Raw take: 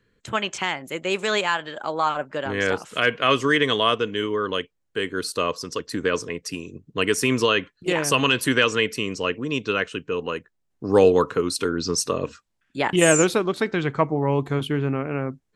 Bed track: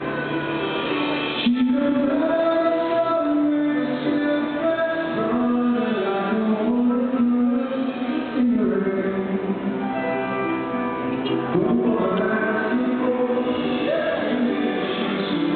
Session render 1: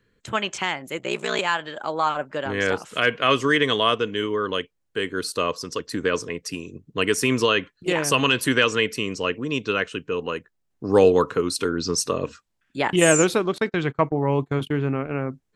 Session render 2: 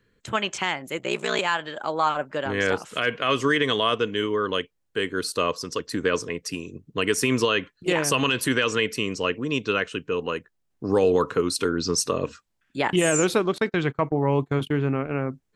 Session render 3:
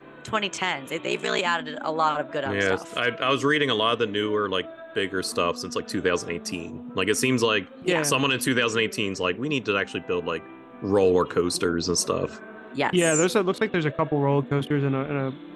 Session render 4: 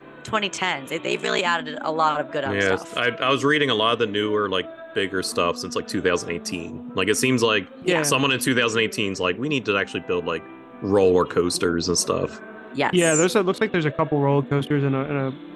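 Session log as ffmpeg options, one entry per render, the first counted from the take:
ffmpeg -i in.wav -filter_complex "[0:a]asettb=1/sr,asplit=3[link_01][link_02][link_03];[link_01]atrim=end=0.984[link_04];[link_02]atrim=start=0.98:end=1.39,asetpts=PTS-STARTPTS,afade=type=in:duration=0.004:curve=qsin,afade=type=out:start_time=0.406:duration=0.004:curve=qsin,aeval=exprs='val(0)*sin(2*PI*31*n/s)':channel_layout=same[link_05];[link_03]atrim=start=1.386[link_06];[link_04][link_05]acrossfade=duration=0.004:curve1=hsin:curve2=qsin[link_07];[link_07][link_06]acrossfade=duration=0.004:curve1=qsin:curve2=hsin,asettb=1/sr,asplit=3[link_08][link_09][link_10];[link_08]atrim=end=13.584[link_11];[link_09]atrim=start=13.58:end=15.21,asetpts=PTS-STARTPTS,afade=type=in:duration=0.004:curve=qsin,afade=type=out:start_time=1.626:duration=0.004:curve=qsin,agate=range=-27dB:threshold=-30dB:ratio=16:release=100:detection=peak[link_12];[link_10]atrim=start=15.206[link_13];[link_11][link_12]acrossfade=duration=0.004:curve1=hsin:curve2=qsin[link_14];[link_14][link_13]acrossfade=duration=0.004:curve1=qsin:curve2=hsin" out.wav
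ffmpeg -i in.wav -af "alimiter=limit=-10.5dB:level=0:latency=1:release=60" out.wav
ffmpeg -i in.wav -i bed.wav -filter_complex "[1:a]volume=-20dB[link_01];[0:a][link_01]amix=inputs=2:normalize=0" out.wav
ffmpeg -i in.wav -af "volume=2.5dB" out.wav

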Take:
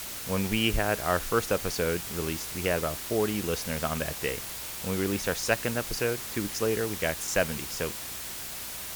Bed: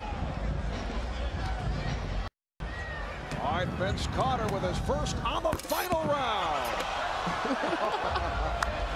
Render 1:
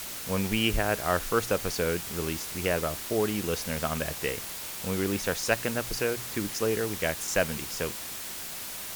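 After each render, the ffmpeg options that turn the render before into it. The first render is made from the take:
ffmpeg -i in.wav -af "bandreject=frequency=60:width_type=h:width=4,bandreject=frequency=120:width_type=h:width=4" out.wav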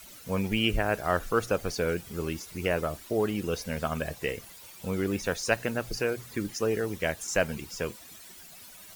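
ffmpeg -i in.wav -af "afftdn=noise_reduction=14:noise_floor=-38" out.wav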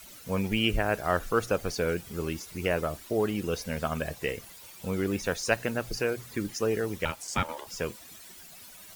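ffmpeg -i in.wav -filter_complex "[0:a]asettb=1/sr,asplit=3[link_01][link_02][link_03];[link_01]atrim=end=7.054[link_04];[link_02]atrim=start=7.05:end=7.67,asetpts=PTS-STARTPTS,afade=type=in:duration=0.004:curve=qsin,afade=type=out:start_time=0.616:duration=0.004:curve=qsin,aeval=exprs='val(0)*sin(2*PI*730*n/s)':channel_layout=same[link_05];[link_03]atrim=start=7.666[link_06];[link_04][link_05]acrossfade=duration=0.004:curve1=hsin:curve2=qsin[link_07];[link_07][link_06]acrossfade=duration=0.004:curve1=qsin:curve2=hsin" out.wav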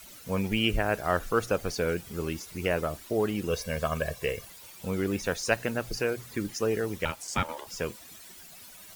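ffmpeg -i in.wav -filter_complex "[0:a]asettb=1/sr,asplit=3[link_01][link_02][link_03];[link_01]atrim=end=3.504[link_04];[link_02]atrim=start=3.5:end=4.47,asetpts=PTS-STARTPTS,afade=type=in:duration=0.004:curve=qsin,afade=type=out:start_time=0.966:duration=0.004:curve=qsin,aecho=1:1:1.8:0.53,atrim=end_sample=42777[link_05];[link_03]atrim=start=4.466[link_06];[link_04][link_05]acrossfade=duration=0.004:curve1=hsin:curve2=qsin[link_07];[link_07][link_06]acrossfade=duration=0.004:curve1=qsin:curve2=hsin" out.wav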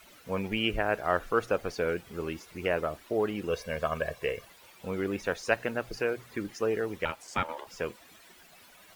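ffmpeg -i in.wav -af "bass=frequency=250:gain=-7,treble=frequency=4000:gain=-11" out.wav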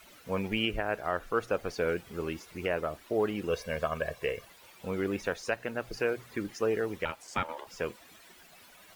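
ffmpeg -i in.wav -af "alimiter=limit=-16.5dB:level=0:latency=1:release=498" out.wav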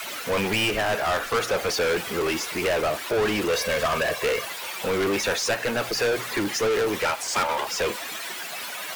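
ffmpeg -i in.wav -filter_complex "[0:a]asplit=2[link_01][link_02];[link_02]highpass=frequency=720:poles=1,volume=30dB,asoftclip=type=tanh:threshold=-16dB[link_03];[link_01][link_03]amix=inputs=2:normalize=0,lowpass=frequency=5300:poles=1,volume=-6dB,acrossover=split=190|730|2600[link_04][link_05][link_06][link_07];[link_07]crystalizer=i=0.5:c=0[link_08];[link_04][link_05][link_06][link_08]amix=inputs=4:normalize=0" out.wav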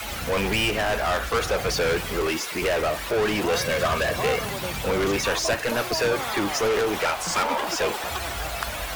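ffmpeg -i in.wav -i bed.wav -filter_complex "[1:a]volume=-2dB[link_01];[0:a][link_01]amix=inputs=2:normalize=0" out.wav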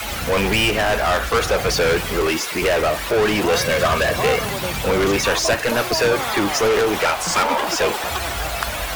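ffmpeg -i in.wav -af "volume=5.5dB" out.wav

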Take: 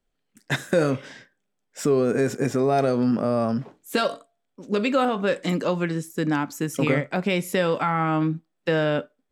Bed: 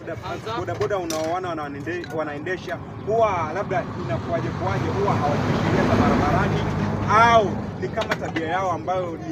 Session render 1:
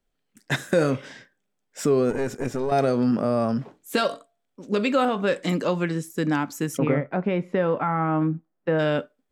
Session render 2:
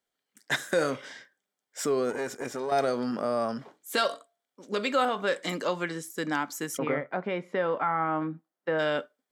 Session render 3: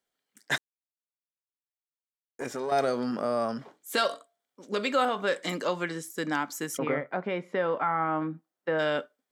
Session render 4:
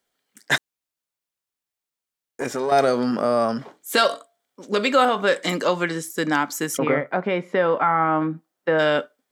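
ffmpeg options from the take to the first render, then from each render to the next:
ffmpeg -i in.wav -filter_complex "[0:a]asettb=1/sr,asplit=3[link_01][link_02][link_03];[link_01]atrim=end=2.104[link_04];[link_02]atrim=start=2.1:end=2.72,asetpts=PTS-STARTPTS,afade=type=in:duration=0.004:curve=qsin,afade=type=out:start_time=0.616:duration=0.004:curve=qsin,aeval=exprs='(tanh(6.31*val(0)+0.75)-tanh(0.75))/6.31':channel_layout=same[link_05];[link_03]atrim=start=2.716[link_06];[link_04][link_05]acrossfade=duration=0.004:curve1=hsin:curve2=qsin[link_07];[link_07][link_06]acrossfade=duration=0.004:curve1=qsin:curve2=hsin,asplit=3[link_08][link_09][link_10];[link_08]afade=type=out:start_time=6.77:duration=0.02[link_11];[link_09]lowpass=1500,afade=type=in:start_time=6.77:duration=0.02,afade=type=out:start_time=8.78:duration=0.02[link_12];[link_10]afade=type=in:start_time=8.78:duration=0.02[link_13];[link_11][link_12][link_13]amix=inputs=3:normalize=0" out.wav
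ffmpeg -i in.wav -af "highpass=frequency=730:poles=1,bandreject=frequency=2600:width=9.6" out.wav
ffmpeg -i in.wav -filter_complex "[0:a]asplit=3[link_01][link_02][link_03];[link_01]atrim=end=0.58,asetpts=PTS-STARTPTS,afade=type=out:start_time=0.576:duration=0.004:curve=hsin[link_04];[link_02]atrim=start=0.58:end=2.39,asetpts=PTS-STARTPTS,volume=0[link_05];[link_03]atrim=start=2.39,asetpts=PTS-STARTPTS,afade=type=in:duration=0.004:curve=hsin[link_06];[link_04][link_05][link_06]concat=n=3:v=0:a=1" out.wav
ffmpeg -i in.wav -af "volume=8dB" out.wav

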